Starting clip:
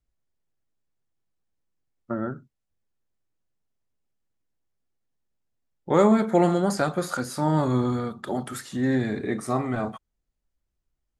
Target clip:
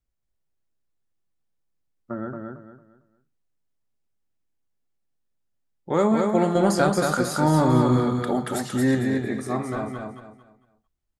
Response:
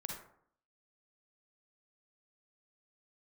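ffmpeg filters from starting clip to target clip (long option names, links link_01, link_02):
-filter_complex "[0:a]asettb=1/sr,asplit=3[link_01][link_02][link_03];[link_01]atrim=end=6.554[link_04];[link_02]atrim=start=6.55:end=8.95,asetpts=PTS-STARTPTS,afade=type=in:duration=0.004:curve=qsin,afade=type=out:start_time=2.396:duration=0.004:curve=qsin,acontrast=51[link_05];[link_03]atrim=start=8.946[link_06];[link_04][link_05]acrossfade=duration=0.004:curve1=hsin:curve2=qsin[link_07];[link_07][link_06]acrossfade=duration=0.004:curve1=qsin:curve2=hsin,aecho=1:1:226|452|678|904:0.631|0.189|0.0568|0.017,volume=-2.5dB"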